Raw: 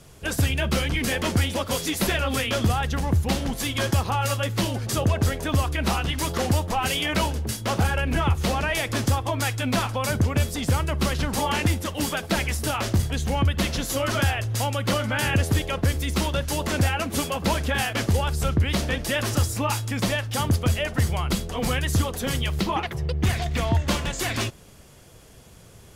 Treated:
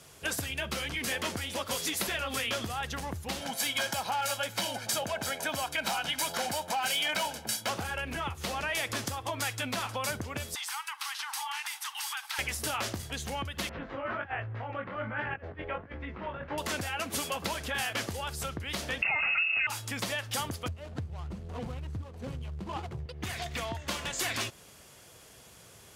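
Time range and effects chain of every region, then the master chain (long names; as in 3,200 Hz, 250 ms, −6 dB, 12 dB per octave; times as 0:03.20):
0:03.41–0:07.69: high-pass filter 220 Hz + comb filter 1.3 ms, depth 60% + gain into a clipping stage and back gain 19.5 dB
0:10.55–0:12.39: Butterworth high-pass 800 Hz 96 dB per octave + notch filter 7,100 Hz, Q 13 + downward compressor 5 to 1, threshold −32 dBFS
0:13.69–0:16.58: low-pass filter 2,000 Hz 24 dB per octave + compressor whose output falls as the input rises −26 dBFS, ratio −0.5 + chorus effect 1.3 Hz, delay 17 ms, depth 5.2 ms
0:19.02–0:19.67: comb filter 1.5 ms, depth 55% + voice inversion scrambler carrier 2,700 Hz + envelope flattener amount 70%
0:20.68–0:23.06: running median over 25 samples + low-pass filter 11,000 Hz + parametric band 84 Hz +13 dB 2.2 octaves
whole clip: downward compressor, threshold −26 dBFS; high-pass filter 57 Hz; low-shelf EQ 450 Hz −10.5 dB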